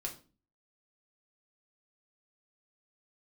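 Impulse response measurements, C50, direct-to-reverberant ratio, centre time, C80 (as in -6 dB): 12.0 dB, 0.0 dB, 14 ms, 17.5 dB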